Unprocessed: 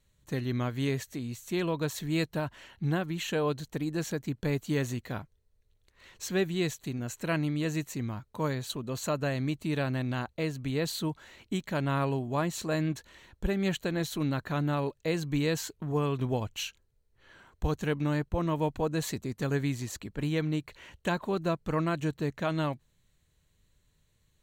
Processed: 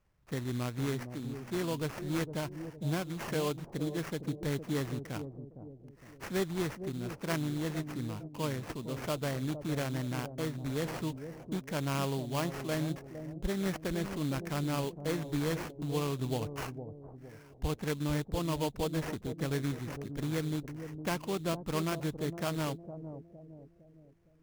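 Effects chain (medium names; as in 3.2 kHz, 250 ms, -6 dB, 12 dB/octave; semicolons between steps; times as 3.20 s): sample-rate reducer 3.8 kHz, jitter 20%; bucket-brigade echo 459 ms, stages 2048, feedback 43%, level -9 dB; trim -4 dB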